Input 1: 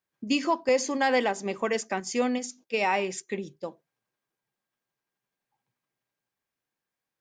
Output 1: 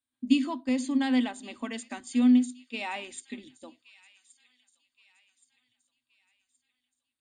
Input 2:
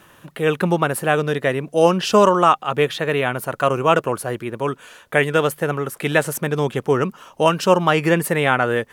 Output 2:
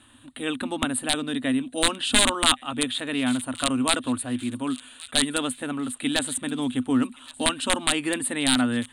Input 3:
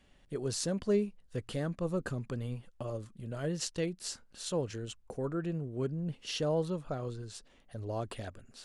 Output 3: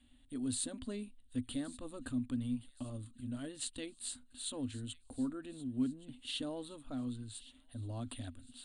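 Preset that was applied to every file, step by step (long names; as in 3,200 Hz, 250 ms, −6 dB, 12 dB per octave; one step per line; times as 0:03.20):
wrap-around overflow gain 4.5 dB
drawn EQ curve 110 Hz 0 dB, 180 Hz −26 dB, 250 Hz +12 dB, 390 Hz −17 dB, 680 Hz −10 dB, 2,300 Hz −7 dB, 3,800 Hz +4 dB, 5,600 Hz −19 dB, 9,100 Hz +9 dB, 13,000 Hz −25 dB
on a send: delay with a high-pass on its return 1,122 ms, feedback 45%, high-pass 2,400 Hz, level −17 dB
on the sum: level −1 dB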